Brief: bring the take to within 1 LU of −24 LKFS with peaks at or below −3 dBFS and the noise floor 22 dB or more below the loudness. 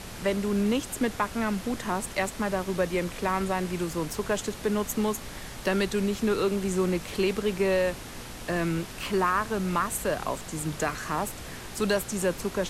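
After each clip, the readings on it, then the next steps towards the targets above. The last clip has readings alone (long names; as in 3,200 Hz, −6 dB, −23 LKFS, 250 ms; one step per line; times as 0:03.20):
mains hum 60 Hz; hum harmonics up to 240 Hz; level of the hum −49 dBFS; background noise floor −41 dBFS; target noise floor −51 dBFS; integrated loudness −28.5 LKFS; sample peak −13.5 dBFS; target loudness −24.0 LKFS
→ hum removal 60 Hz, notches 4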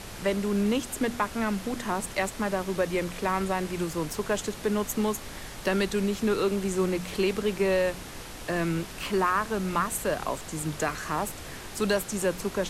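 mains hum none found; background noise floor −41 dBFS; target noise floor −51 dBFS
→ noise reduction from a noise print 10 dB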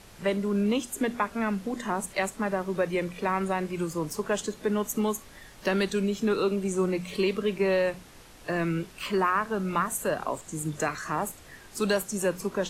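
background noise floor −50 dBFS; target noise floor −51 dBFS
→ noise reduction from a noise print 6 dB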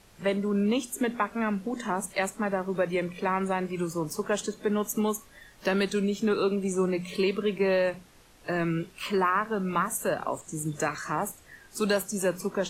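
background noise floor −55 dBFS; integrated loudness −28.5 LKFS; sample peak −13.5 dBFS; target loudness −24.0 LKFS
→ level +4.5 dB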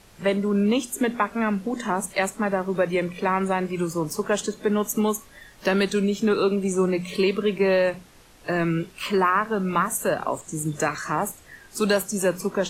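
integrated loudness −24.0 LKFS; sample peak −9.0 dBFS; background noise floor −51 dBFS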